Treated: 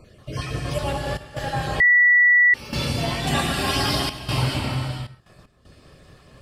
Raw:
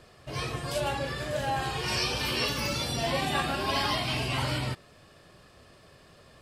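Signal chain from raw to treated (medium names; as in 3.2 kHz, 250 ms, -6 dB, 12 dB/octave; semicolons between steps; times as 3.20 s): random holes in the spectrogram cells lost 28%; 3.27–4.19 s: treble shelf 3.4 kHz +10 dB; gated-style reverb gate 480 ms flat, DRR 0 dB; trance gate "xxxxxx.xxxx.x.x" 77 bpm -12 dB; bass shelf 300 Hz +8.5 dB; 1.80–2.54 s: bleep 1.95 kHz -12.5 dBFS; trim +1 dB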